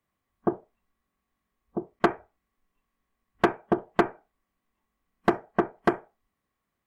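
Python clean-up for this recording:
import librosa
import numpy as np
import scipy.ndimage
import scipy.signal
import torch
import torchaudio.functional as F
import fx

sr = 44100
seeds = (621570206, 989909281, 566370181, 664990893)

y = fx.fix_declip(x, sr, threshold_db=-11.0)
y = fx.fix_interpolate(y, sr, at_s=(1.99,), length_ms=9.6)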